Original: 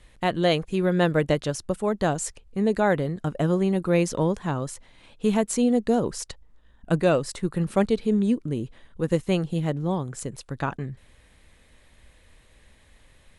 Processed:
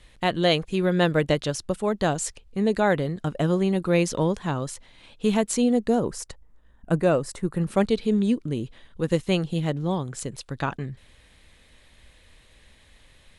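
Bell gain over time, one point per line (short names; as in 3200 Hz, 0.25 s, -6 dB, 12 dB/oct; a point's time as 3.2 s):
bell 3700 Hz 1.4 oct
5.54 s +4.5 dB
6.27 s -6 dB
7.45 s -6 dB
7.96 s +5.5 dB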